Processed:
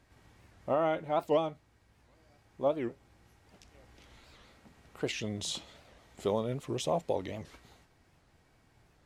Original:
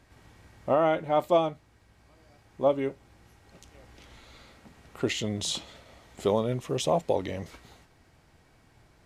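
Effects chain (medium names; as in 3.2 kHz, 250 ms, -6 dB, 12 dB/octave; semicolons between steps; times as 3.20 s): warped record 78 rpm, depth 250 cents; trim -5.5 dB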